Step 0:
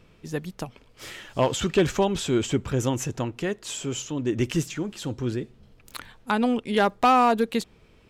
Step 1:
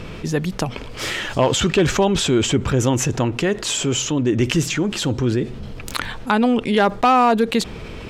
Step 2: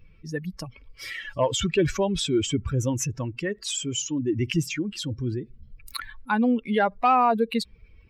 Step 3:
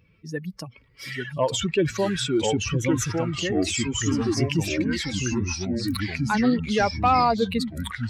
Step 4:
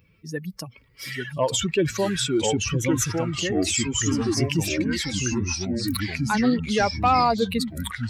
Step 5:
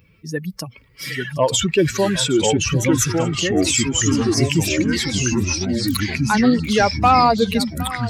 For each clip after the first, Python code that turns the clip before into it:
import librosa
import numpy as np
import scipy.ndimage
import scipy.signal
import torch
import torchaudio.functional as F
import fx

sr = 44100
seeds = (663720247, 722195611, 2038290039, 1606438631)

y1 = fx.high_shelf(x, sr, hz=11000.0, db=-11.0)
y1 = fx.env_flatten(y1, sr, amount_pct=50)
y1 = y1 * 10.0 ** (3.0 / 20.0)
y2 = fx.bin_expand(y1, sr, power=2.0)
y2 = y2 * 10.0 ** (-2.5 / 20.0)
y3 = scipy.signal.sosfilt(scipy.signal.butter(2, 93.0, 'highpass', fs=sr, output='sos'), y2)
y3 = fx.echo_pitch(y3, sr, ms=779, semitones=-3, count=3, db_per_echo=-3.0)
y4 = fx.high_shelf(y3, sr, hz=8100.0, db=10.5)
y5 = y4 + 10.0 ** (-16.5 / 20.0) * np.pad(y4, (int(764 * sr / 1000.0), 0))[:len(y4)]
y5 = y5 * 10.0 ** (5.5 / 20.0)